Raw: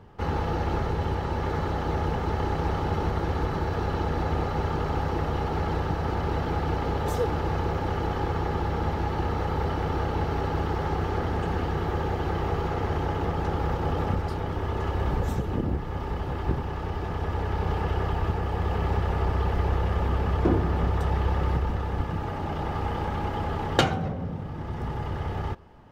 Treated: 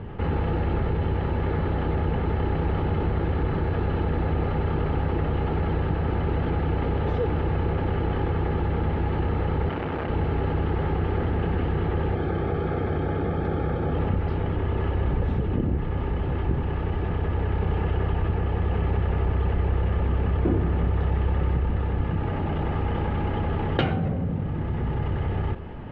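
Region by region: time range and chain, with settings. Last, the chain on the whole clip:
9.69–10.1 HPF 210 Hz 6 dB/oct + core saturation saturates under 720 Hz
12.15–13.94 notch 2700 Hz, Q 6.9 + notch comb 970 Hz
whole clip: LPF 2900 Hz 24 dB/oct; bell 1000 Hz -7.5 dB 1.8 oct; fast leveller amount 50%

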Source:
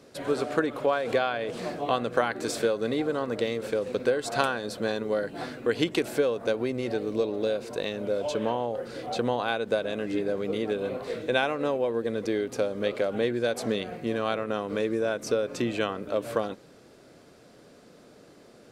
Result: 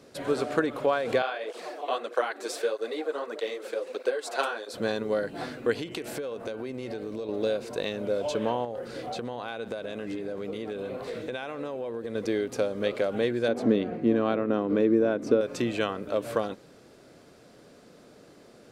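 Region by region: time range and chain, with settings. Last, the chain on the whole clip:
1.22–4.74 HPF 350 Hz 24 dB/oct + tape flanging out of phase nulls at 1.6 Hz, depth 7.6 ms
5.73–7.29 de-hum 119 Hz, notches 26 + compressor 5:1, threshold -31 dBFS
8.64–12.15 echo 0.123 s -23 dB + compressor, threshold -30 dBFS
13.48–15.41 LPF 1700 Hz 6 dB/oct + bell 280 Hz +11 dB 0.95 oct
whole clip: dry

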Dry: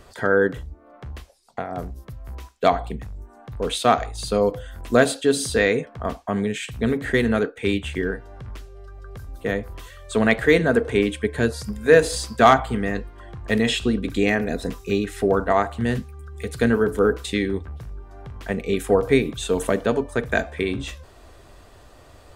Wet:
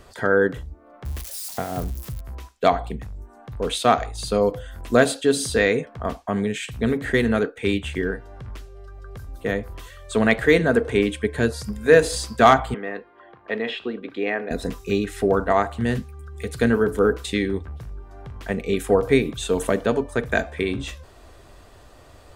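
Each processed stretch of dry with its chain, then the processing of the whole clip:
1.05–2.21 switching spikes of -27 dBFS + low shelf 220 Hz +6.5 dB
12.74–14.51 HPF 400 Hz + air absorption 360 m
whole clip: dry

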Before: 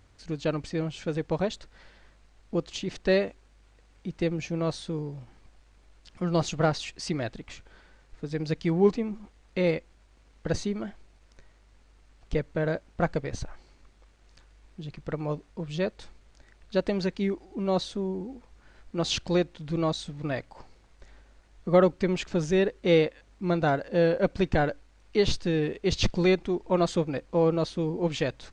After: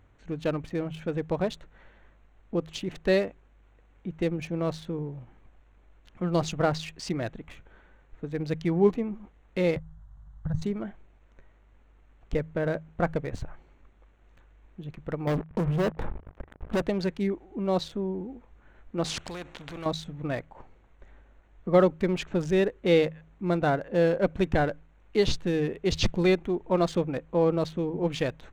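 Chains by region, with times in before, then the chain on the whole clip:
9.76–10.62 resonant low shelf 200 Hz +10 dB, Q 3 + fixed phaser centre 1000 Hz, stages 4 + compressor 2:1, threshold -30 dBFS
15.27–16.82 LPF 1200 Hz + sample leveller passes 5 + compressor 5:1, threshold -24 dBFS
19.05–19.86 compressor, threshold -26 dBFS + spectral compressor 2:1
whole clip: Wiener smoothing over 9 samples; de-hum 79.4 Hz, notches 2

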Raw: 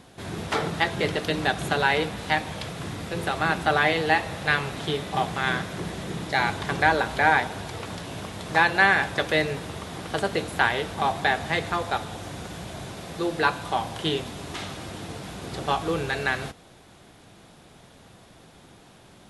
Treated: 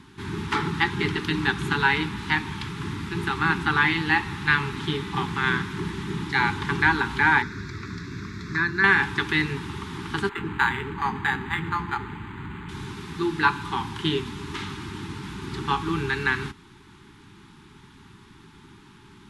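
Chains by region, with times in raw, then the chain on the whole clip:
7.42–8.84 fixed phaser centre 3000 Hz, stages 6 + dynamic EQ 2500 Hz, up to -7 dB, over -34 dBFS, Q 0.76
10.29–12.69 notches 50/100/150/200/250/300/350/400/450 Hz + bands offset in time highs, lows 80 ms, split 420 Hz + decimation joined by straight lines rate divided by 8×
whole clip: Chebyshev band-stop 410–850 Hz, order 4; high shelf 5800 Hz -11.5 dB; gain +3.5 dB

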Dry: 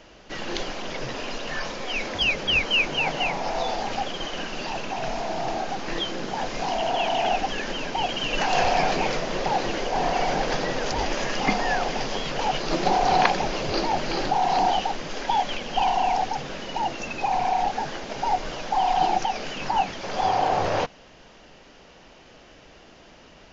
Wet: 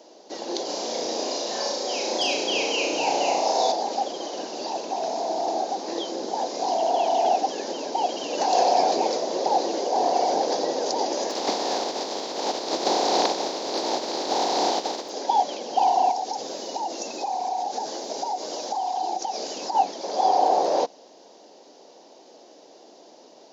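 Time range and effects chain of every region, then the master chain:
0.65–3.72 high shelf 5000 Hz +7.5 dB + flutter echo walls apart 5.9 m, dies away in 0.73 s
11.3–15.08 spectral contrast lowered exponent 0.32 + air absorption 170 m
16.11–19.75 high shelf 6100 Hz +10.5 dB + compressor, threshold -26 dBFS
whole clip: HPF 290 Hz 24 dB/oct; band shelf 1900 Hz -15.5 dB; gain +3.5 dB

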